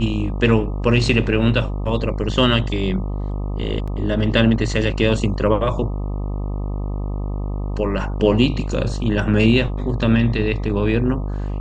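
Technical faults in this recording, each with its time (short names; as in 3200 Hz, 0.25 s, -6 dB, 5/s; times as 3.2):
buzz 50 Hz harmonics 25 -24 dBFS
3.87–3.88 gap 6.1 ms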